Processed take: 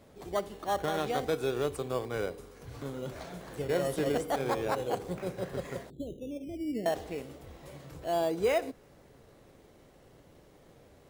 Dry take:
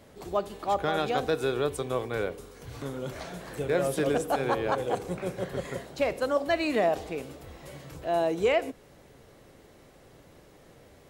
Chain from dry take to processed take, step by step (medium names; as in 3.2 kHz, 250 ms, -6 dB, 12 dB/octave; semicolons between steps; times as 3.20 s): 5.90–6.86 s: inverse Chebyshev low-pass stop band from 1.7 kHz, stop band 70 dB; in parallel at -5.5 dB: decimation with a swept rate 14×, swing 60% 0.32 Hz; on the sum: trim -6.5 dB